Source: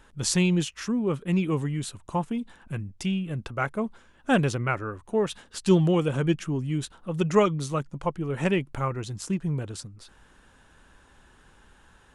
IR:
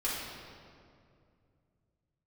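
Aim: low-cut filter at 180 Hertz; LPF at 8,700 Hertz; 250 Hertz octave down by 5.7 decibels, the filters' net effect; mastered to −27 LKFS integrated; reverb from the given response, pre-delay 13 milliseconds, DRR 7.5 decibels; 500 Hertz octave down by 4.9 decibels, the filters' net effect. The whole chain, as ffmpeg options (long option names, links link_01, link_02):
-filter_complex "[0:a]highpass=180,lowpass=8700,equalizer=frequency=250:width_type=o:gain=-4.5,equalizer=frequency=500:width_type=o:gain=-4.5,asplit=2[link_01][link_02];[1:a]atrim=start_sample=2205,adelay=13[link_03];[link_02][link_03]afir=irnorm=-1:irlink=0,volume=-14dB[link_04];[link_01][link_04]amix=inputs=2:normalize=0,volume=4dB"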